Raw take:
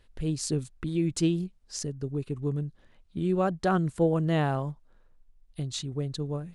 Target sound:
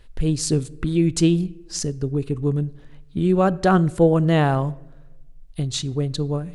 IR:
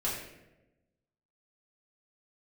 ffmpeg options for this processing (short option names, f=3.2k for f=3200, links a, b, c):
-filter_complex "[0:a]lowshelf=f=60:g=7,asplit=2[a][b];[1:a]atrim=start_sample=2205[c];[b][c]afir=irnorm=-1:irlink=0,volume=-23.5dB[d];[a][d]amix=inputs=2:normalize=0,volume=7.5dB"